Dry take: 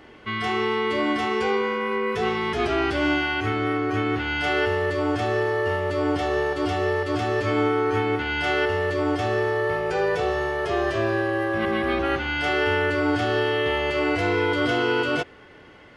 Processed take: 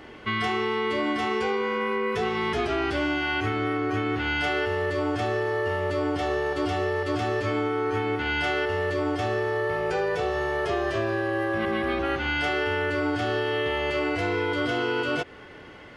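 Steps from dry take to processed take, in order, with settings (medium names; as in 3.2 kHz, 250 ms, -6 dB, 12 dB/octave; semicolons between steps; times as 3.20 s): compression, threshold -26 dBFS, peak gain reduction 8.5 dB; trim +3 dB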